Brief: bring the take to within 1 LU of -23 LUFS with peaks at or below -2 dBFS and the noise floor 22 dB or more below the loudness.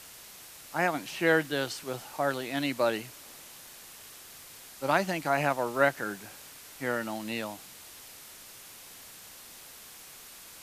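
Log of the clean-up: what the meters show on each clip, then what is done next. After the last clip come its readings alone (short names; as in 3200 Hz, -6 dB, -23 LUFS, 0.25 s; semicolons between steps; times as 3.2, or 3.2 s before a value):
noise floor -49 dBFS; noise floor target -52 dBFS; loudness -30.0 LUFS; peak -10.0 dBFS; loudness target -23.0 LUFS
-> noise print and reduce 6 dB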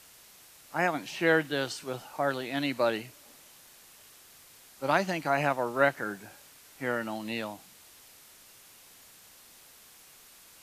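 noise floor -55 dBFS; loudness -30.0 LUFS; peak -10.0 dBFS; loudness target -23.0 LUFS
-> gain +7 dB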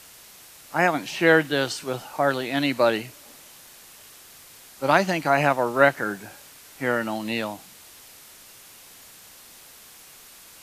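loudness -23.0 LUFS; peak -3.0 dBFS; noise floor -48 dBFS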